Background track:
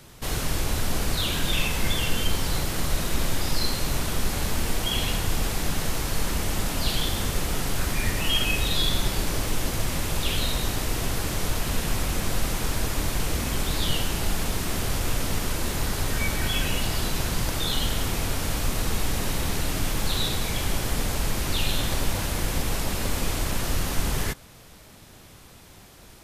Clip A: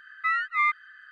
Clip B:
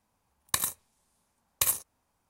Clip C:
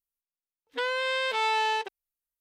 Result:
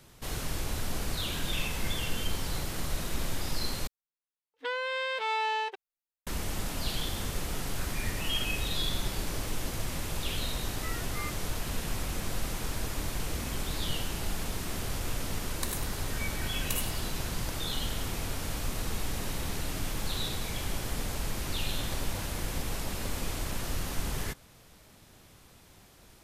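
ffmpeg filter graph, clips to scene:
ffmpeg -i bed.wav -i cue0.wav -i cue1.wav -i cue2.wav -filter_complex "[0:a]volume=-7.5dB[link_01];[3:a]bass=frequency=250:gain=-8,treble=frequency=4000:gain=-5[link_02];[2:a]aecho=1:1:99|198|297|396:0.282|0.116|0.0474|0.0194[link_03];[link_01]asplit=2[link_04][link_05];[link_04]atrim=end=3.874[link_06];[link_02]atrim=end=2.4,asetpts=PTS-STARTPTS,volume=-3.5dB[link_07];[link_05]atrim=start=6.266[link_08];[1:a]atrim=end=1.11,asetpts=PTS-STARTPTS,volume=-17.5dB,afade=type=in:duration=0.004:curve=hsin,afade=type=out:start_time=1.106:duration=0.004:curve=hsin,adelay=10590[link_09];[link_03]atrim=end=2.29,asetpts=PTS-STARTPTS,volume=-9dB,afade=type=in:duration=0.004:curve=hsin,afade=type=out:start_time=2.286:duration=0.004:curve=hsin,adelay=15090[link_10];[link_06][link_07]acrossfade=duration=0.004:curve1=hsin:curve2=hsin[link_11];[link_11][link_08]acrossfade=duration=0.004:curve1=hsin:curve2=hsin[link_12];[link_12][link_09][link_10]amix=inputs=3:normalize=0" out.wav

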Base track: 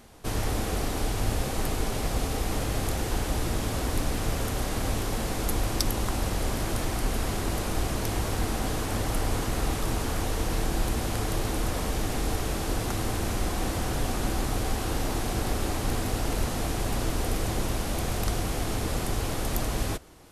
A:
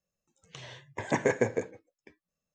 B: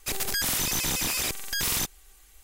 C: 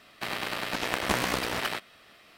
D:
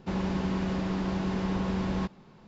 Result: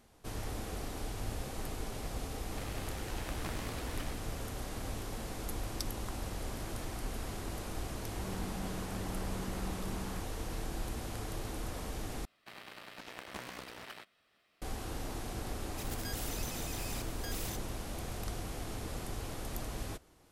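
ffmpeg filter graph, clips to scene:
ffmpeg -i bed.wav -i cue0.wav -i cue1.wav -i cue2.wav -i cue3.wav -filter_complex "[3:a]asplit=2[link_01][link_02];[0:a]volume=-11.5dB,asplit=2[link_03][link_04];[link_03]atrim=end=12.254[link_05];[link_02]atrim=end=2.37,asetpts=PTS-STARTPTS,volume=-17.5dB[link_06];[link_04]atrim=start=14.616[link_07];[link_01]atrim=end=2.37,asetpts=PTS-STARTPTS,volume=-17.5dB,afade=type=in:duration=0.004:curve=hsin,afade=type=out:start_time=2.366:duration=0.004:curve=hsin,adelay=2350[link_08];[4:a]atrim=end=2.47,asetpts=PTS-STARTPTS,volume=-14dB,afade=type=in:duration=0.004:curve=hsin,afade=type=out:start_time=2.466:duration=0.004:curve=hsin,adelay=8120[link_09];[2:a]atrim=end=2.43,asetpts=PTS-STARTPTS,volume=-16.5dB,afade=type=in:duration=0.004:curve=hsin,afade=type=out:start_time=2.426:duration=0.004:curve=hsin,adelay=15710[link_10];[link_05][link_06]acrossfade=duration=0.004:curve1=hsin:curve2=hsin[link_11];[link_11][link_07]acrossfade=duration=0.004:curve1=hsin:curve2=hsin[link_12];[link_12][link_08][link_09][link_10]amix=inputs=4:normalize=0" out.wav

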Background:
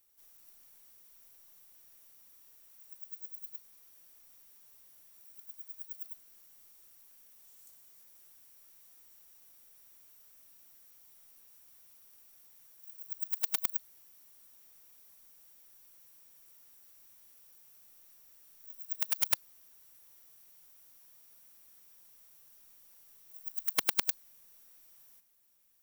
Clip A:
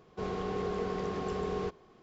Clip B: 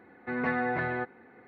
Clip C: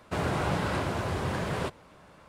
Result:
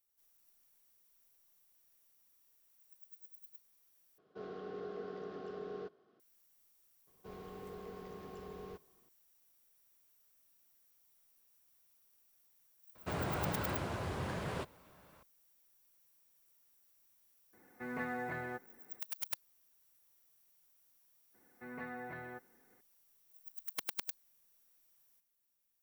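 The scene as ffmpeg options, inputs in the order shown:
ffmpeg -i bed.wav -i cue0.wav -i cue1.wav -i cue2.wav -filter_complex "[1:a]asplit=2[link_01][link_02];[2:a]asplit=2[link_03][link_04];[0:a]volume=-11dB[link_05];[link_01]highpass=160,equalizer=frequency=290:width_type=q:width=4:gain=4,equalizer=frequency=420:width_type=q:width=4:gain=4,equalizer=frequency=650:width_type=q:width=4:gain=5,equalizer=frequency=940:width_type=q:width=4:gain=-7,equalizer=frequency=1400:width_type=q:width=4:gain=7,equalizer=frequency=2300:width_type=q:width=4:gain=-6,lowpass=frequency=5200:width=0.5412,lowpass=frequency=5200:width=1.3066[link_06];[link_03]acrusher=bits=7:mode=log:mix=0:aa=0.000001[link_07];[link_05]asplit=2[link_08][link_09];[link_08]atrim=end=4.184[link_10];[link_06]atrim=end=2.02,asetpts=PTS-STARTPTS,volume=-13dB[link_11];[link_09]atrim=start=6.196[link_12];[link_02]atrim=end=2.02,asetpts=PTS-STARTPTS,volume=-14.5dB,afade=type=in:duration=0.004:curve=hsin,afade=type=out:start_time=2.016:duration=0.004:curve=hsin,adelay=7070[link_13];[3:a]atrim=end=2.28,asetpts=PTS-STARTPTS,volume=-8.5dB,afade=type=in:duration=0.004:curve=hsin,afade=type=out:start_time=2.276:duration=0.004:curve=hsin,adelay=12950[link_14];[link_07]atrim=end=1.47,asetpts=PTS-STARTPTS,volume=-10.5dB,afade=type=in:duration=0.004:curve=hsin,afade=type=out:start_time=1.466:duration=0.004:curve=hsin,adelay=17530[link_15];[link_04]atrim=end=1.47,asetpts=PTS-STARTPTS,volume=-16dB,afade=type=in:duration=0.004:curve=hsin,afade=type=out:start_time=1.466:duration=0.004:curve=hsin,adelay=21340[link_16];[link_10][link_11]acrossfade=duration=0.004:curve1=hsin:curve2=hsin[link_17];[link_17][link_12]acrossfade=duration=0.004:curve1=hsin:curve2=hsin[link_18];[link_18][link_13][link_14][link_15][link_16]amix=inputs=5:normalize=0" out.wav

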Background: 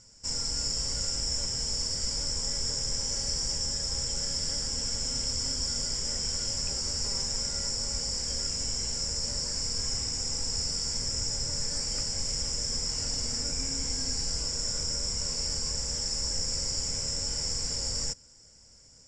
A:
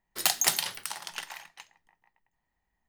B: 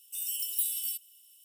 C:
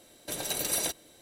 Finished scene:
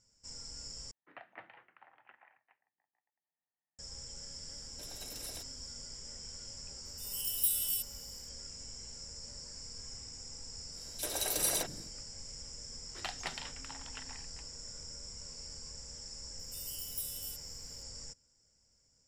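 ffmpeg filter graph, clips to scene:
ffmpeg -i bed.wav -i cue0.wav -i cue1.wav -i cue2.wav -filter_complex "[1:a]asplit=2[link_01][link_02];[3:a]asplit=2[link_03][link_04];[2:a]asplit=2[link_05][link_06];[0:a]volume=-15.5dB[link_07];[link_01]highpass=frequency=210:width_type=q:width=0.5412,highpass=frequency=210:width_type=q:width=1.307,lowpass=frequency=2300:width_type=q:width=0.5176,lowpass=frequency=2300:width_type=q:width=0.7071,lowpass=frequency=2300:width_type=q:width=1.932,afreqshift=-55[link_08];[link_05]dynaudnorm=framelen=140:gausssize=5:maxgain=15dB[link_09];[link_04]acrossover=split=270|2800[link_10][link_11][link_12];[link_11]adelay=40[link_13];[link_10]adelay=370[link_14];[link_14][link_13][link_12]amix=inputs=3:normalize=0[link_15];[link_02]lowpass=3100[link_16];[link_07]asplit=2[link_17][link_18];[link_17]atrim=end=0.914[link_19];[link_08]atrim=end=2.88,asetpts=PTS-STARTPTS,volume=-18dB[link_20];[link_18]atrim=start=3.786[link_21];[link_03]atrim=end=1.21,asetpts=PTS-STARTPTS,volume=-17dB,afade=type=in:duration=0.004:curve=hsin,afade=type=out:start_time=1.206:duration=0.004:curve=hsin,adelay=4510[link_22];[link_09]atrim=end=1.44,asetpts=PTS-STARTPTS,volume=-13.5dB,afade=type=in:duration=0.004:curve=hsin,afade=type=out:start_time=1.436:duration=0.004:curve=hsin,adelay=6850[link_23];[link_15]atrim=end=1.21,asetpts=PTS-STARTPTS,volume=-1.5dB,afade=type=in:duration=0.1,afade=type=out:start_time=1.11:duration=0.1,adelay=10710[link_24];[link_16]atrim=end=2.88,asetpts=PTS-STARTPTS,volume=-9.5dB,afade=type=in:duration=0.004:curve=hsin,afade=type=out:start_time=2.876:duration=0.004:curve=hsin,adelay=12790[link_25];[link_06]atrim=end=1.44,asetpts=PTS-STARTPTS,volume=-10dB,afade=type=in:duration=0.004:curve=hsin,afade=type=out:start_time=1.436:duration=0.004:curve=hsin,adelay=16390[link_26];[link_19][link_20]acrossfade=duration=0.004:curve1=hsin:curve2=hsin[link_27];[link_27][link_21]acrossfade=duration=0.004:curve1=hsin:curve2=hsin[link_28];[link_28][link_22][link_23][link_24][link_25][link_26]amix=inputs=6:normalize=0" out.wav

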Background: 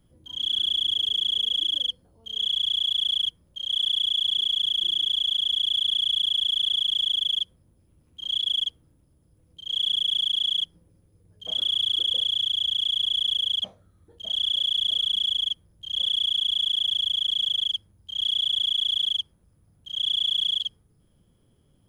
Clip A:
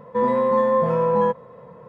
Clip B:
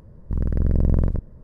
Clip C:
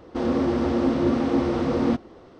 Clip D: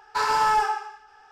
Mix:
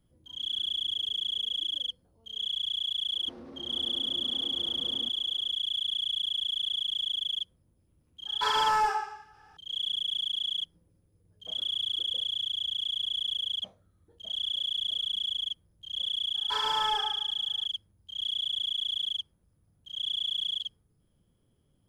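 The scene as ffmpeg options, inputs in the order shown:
ffmpeg -i bed.wav -i cue0.wav -i cue1.wav -i cue2.wav -i cue3.wav -filter_complex "[4:a]asplit=2[link_01][link_02];[0:a]volume=-7dB[link_03];[3:a]acompressor=threshold=-28dB:ratio=6:attack=3.2:release=140:knee=1:detection=peak,atrim=end=2.39,asetpts=PTS-STARTPTS,volume=-15dB,afade=type=in:duration=0.004:curve=hsin,afade=type=out:start_time=2.386:duration=0.004:curve=hsin,adelay=138033S[link_04];[link_01]atrim=end=1.31,asetpts=PTS-STARTPTS,volume=-4.5dB,afade=type=in:duration=0.004:curve=hsin,afade=type=out:start_time=1.306:duration=0.004:curve=hsin,adelay=364266S[link_05];[link_02]atrim=end=1.31,asetpts=PTS-STARTPTS,volume=-9.5dB,afade=type=in:duration=0.004:curve=hsin,afade=type=out:start_time=1.306:duration=0.004:curve=hsin,adelay=16350[link_06];[link_03][link_04][link_05][link_06]amix=inputs=4:normalize=0" out.wav

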